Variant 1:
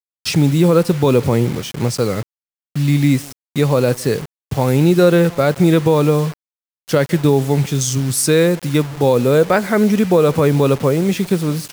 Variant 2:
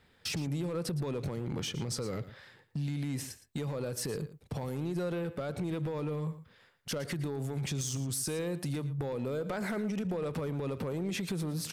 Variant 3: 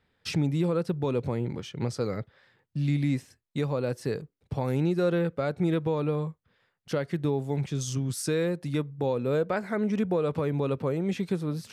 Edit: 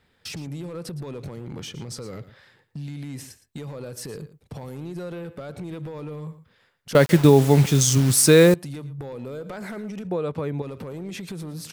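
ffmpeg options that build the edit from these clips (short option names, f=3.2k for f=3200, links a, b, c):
-filter_complex "[1:a]asplit=3[a][b][c];[a]atrim=end=6.952[d];[0:a]atrim=start=6.948:end=8.542[e];[b]atrim=start=8.538:end=10.092[f];[2:a]atrim=start=10.088:end=10.622[g];[c]atrim=start=10.618[h];[d][e]acrossfade=d=0.004:c1=hsin:c2=hsin[i];[i][f]acrossfade=d=0.004:c1=hsin:c2=hsin[j];[j][g]acrossfade=d=0.004:c1=hsin:c2=hsin[k];[k][h]acrossfade=d=0.004:c1=hsin:c2=hsin"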